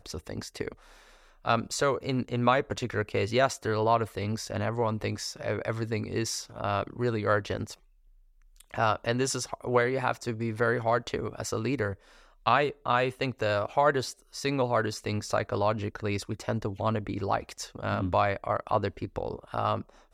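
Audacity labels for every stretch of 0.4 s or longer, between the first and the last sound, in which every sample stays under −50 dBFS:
7.770000	8.420000	silence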